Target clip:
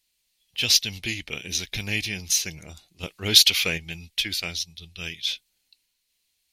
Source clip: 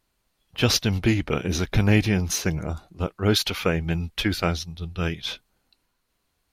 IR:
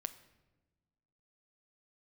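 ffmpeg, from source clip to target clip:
-filter_complex "[0:a]highshelf=frequency=6100:gain=-5,asettb=1/sr,asplit=3[link_01][link_02][link_03];[link_01]atrim=end=3.034[link_04];[link_02]atrim=start=3.03:end=3.78,asetpts=PTS-STARTPTS,afade=type=in:duration=0.004:curve=qsin,afade=type=out:start_time=0.746:duration=0.004:curve=qsin,acontrast=67[link_05];[link_03]atrim=start=3.776[link_06];[link_04][link_05]acrossfade=duration=0.004:curve1=hsin:curve2=qsin[link_07];[link_07][link_06]acrossfade=duration=0.004:curve1=qsin:curve2=hsin,aexciter=amount=9.9:drive=4:freq=2000,volume=-14.5dB"

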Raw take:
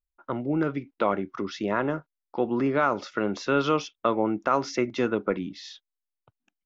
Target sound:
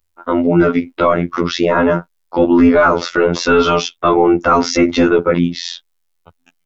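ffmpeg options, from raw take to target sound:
ffmpeg -i in.wav -af "afftfilt=real='hypot(re,im)*cos(PI*b)':imag='0':win_size=2048:overlap=0.75,apsyclip=23.5dB,volume=-3dB" out.wav

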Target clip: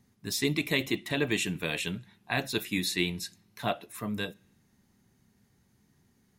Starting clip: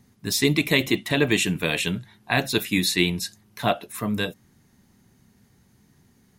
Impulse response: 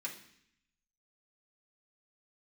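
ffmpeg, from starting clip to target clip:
-filter_complex "[0:a]asplit=2[link_01][link_02];[1:a]atrim=start_sample=2205,lowpass=8400[link_03];[link_02][link_03]afir=irnorm=-1:irlink=0,volume=-18.5dB[link_04];[link_01][link_04]amix=inputs=2:normalize=0,volume=-8dB"

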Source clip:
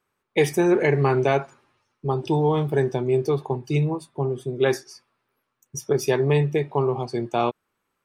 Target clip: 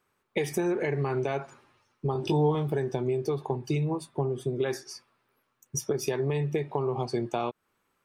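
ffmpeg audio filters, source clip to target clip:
ffmpeg -i in.wav -filter_complex "[0:a]alimiter=limit=-14.5dB:level=0:latency=1:release=235,acompressor=threshold=-27dB:ratio=6,asettb=1/sr,asplit=3[link_01][link_02][link_03];[link_01]atrim=end=2.134[link_04];[link_02]atrim=start=2.13:end=2.55,asetpts=PTS-STARTPTS,afade=type=in:duration=0.004:curve=qsin,afade=type=out:start_time=0.416:duration=0.004:curve=qsin,asplit=2[link_05][link_06];[link_06]adelay=20,volume=-3dB[link_07];[link_05][link_07]amix=inputs=2:normalize=0,atrim=end_sample=18522[link_08];[link_03]atrim=start=2.546[link_09];[link_04][link_08]acrossfade=duration=0.004:curve1=hsin:curve2=qsin[link_10];[link_10][link_09]acrossfade=duration=0.004:curve1=qsin:curve2=hsin,volume=2dB" out.wav

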